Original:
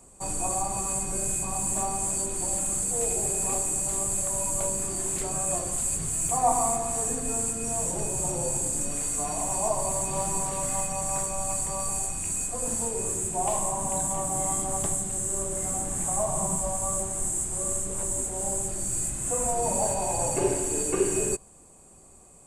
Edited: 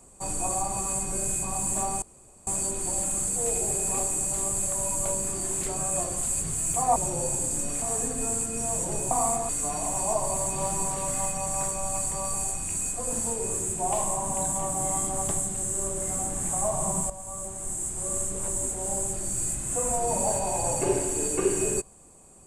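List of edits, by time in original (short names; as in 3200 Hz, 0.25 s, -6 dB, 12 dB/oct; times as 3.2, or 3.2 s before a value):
2.02 insert room tone 0.45 s
6.51–6.89 swap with 8.18–9.04
16.65–17.78 fade in, from -12.5 dB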